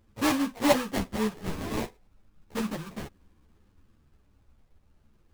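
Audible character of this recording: phasing stages 4, 0.38 Hz, lowest notch 410–1000 Hz; aliases and images of a low sample rate 1400 Hz, jitter 20%; a shimmering, thickened sound

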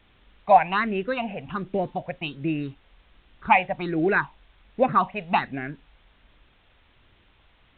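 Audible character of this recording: phasing stages 6, 1.3 Hz, lowest notch 320–1100 Hz; a quantiser's noise floor 10-bit, dither triangular; µ-law

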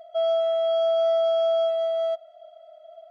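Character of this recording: noise floor -51 dBFS; spectral tilt -11.5 dB/oct

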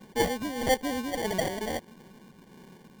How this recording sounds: phasing stages 6, 1.6 Hz, lowest notch 720–1500 Hz; aliases and images of a low sample rate 1300 Hz, jitter 0%

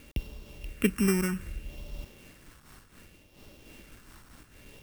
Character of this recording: a buzz of ramps at a fixed pitch in blocks of 16 samples; phasing stages 4, 0.65 Hz, lowest notch 570–1600 Hz; a quantiser's noise floor 10-bit, dither none; noise-modulated level

